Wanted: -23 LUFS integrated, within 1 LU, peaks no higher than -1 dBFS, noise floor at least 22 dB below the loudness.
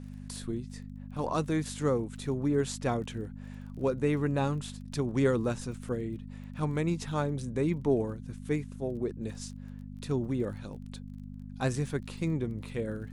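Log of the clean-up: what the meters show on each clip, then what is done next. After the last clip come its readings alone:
ticks 21/s; hum 50 Hz; harmonics up to 250 Hz; hum level -41 dBFS; loudness -32.5 LUFS; peak -14.0 dBFS; loudness target -23.0 LUFS
-> de-click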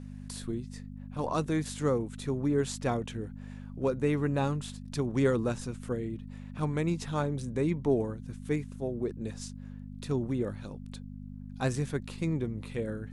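ticks 0/s; hum 50 Hz; harmonics up to 250 Hz; hum level -41 dBFS
-> de-hum 50 Hz, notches 5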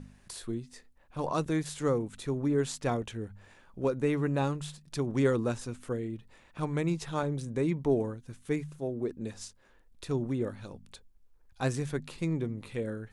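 hum none; loudness -32.5 LUFS; peak -14.5 dBFS; loudness target -23.0 LUFS
-> gain +9.5 dB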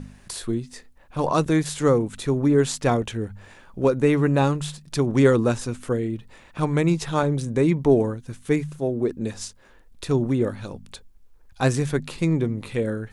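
loudness -23.0 LUFS; peak -5.0 dBFS; noise floor -51 dBFS

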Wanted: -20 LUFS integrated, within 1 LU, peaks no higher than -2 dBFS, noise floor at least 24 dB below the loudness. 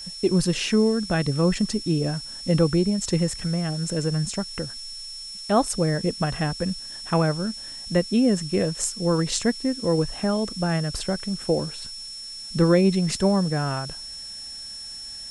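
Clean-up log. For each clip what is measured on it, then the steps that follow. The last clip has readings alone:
steady tone 5400 Hz; tone level -35 dBFS; noise floor -37 dBFS; noise floor target -49 dBFS; loudness -24.5 LUFS; peak -6.0 dBFS; loudness target -20.0 LUFS
-> notch 5400 Hz, Q 30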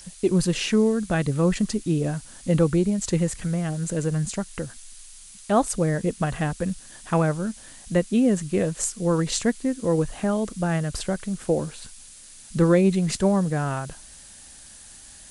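steady tone none; noise floor -46 dBFS; noise floor target -48 dBFS
-> noise print and reduce 6 dB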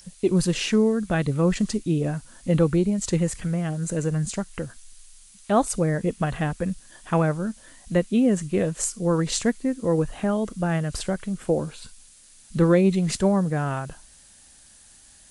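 noise floor -52 dBFS; loudness -24.0 LUFS; peak -6.5 dBFS; loudness target -20.0 LUFS
-> gain +4 dB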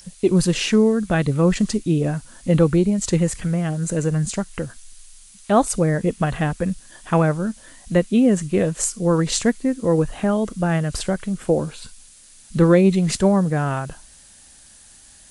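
loudness -20.0 LUFS; peak -2.5 dBFS; noise floor -48 dBFS

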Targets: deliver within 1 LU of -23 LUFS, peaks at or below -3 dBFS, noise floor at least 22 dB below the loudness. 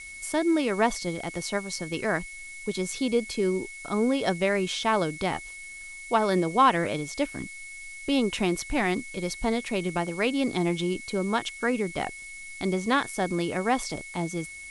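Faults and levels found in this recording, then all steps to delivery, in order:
steady tone 2200 Hz; tone level -40 dBFS; noise floor -42 dBFS; noise floor target -50 dBFS; loudness -27.5 LUFS; peak -9.5 dBFS; loudness target -23.0 LUFS
-> notch 2200 Hz, Q 30; denoiser 8 dB, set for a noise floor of -42 dBFS; gain +4.5 dB

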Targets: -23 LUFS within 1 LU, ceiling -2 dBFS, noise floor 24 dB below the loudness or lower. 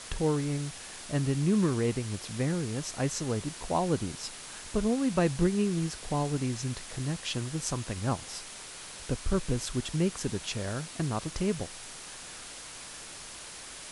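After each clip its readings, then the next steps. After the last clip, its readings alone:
noise floor -45 dBFS; noise floor target -56 dBFS; loudness -32.0 LUFS; peak -13.0 dBFS; loudness target -23.0 LUFS
-> denoiser 11 dB, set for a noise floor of -45 dBFS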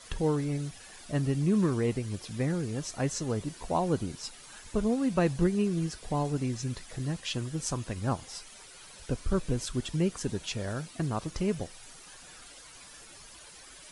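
noise floor -51 dBFS; noise floor target -56 dBFS
-> denoiser 6 dB, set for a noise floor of -51 dBFS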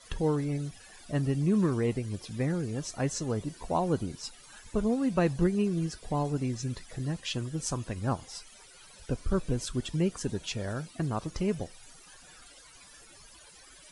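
noise floor -54 dBFS; noise floor target -56 dBFS
-> denoiser 6 dB, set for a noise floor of -54 dBFS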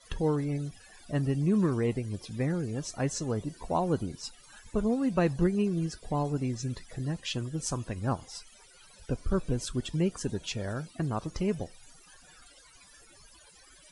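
noise floor -57 dBFS; loudness -31.5 LUFS; peak -14.0 dBFS; loudness target -23.0 LUFS
-> gain +8.5 dB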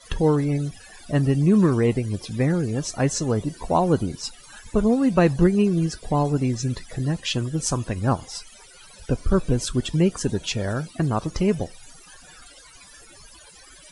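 loudness -23.0 LUFS; peak -5.5 dBFS; noise floor -48 dBFS

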